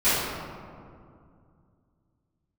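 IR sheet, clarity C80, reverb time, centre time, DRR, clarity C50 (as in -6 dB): 0.0 dB, 2.3 s, 0.13 s, -19.0 dB, -3.0 dB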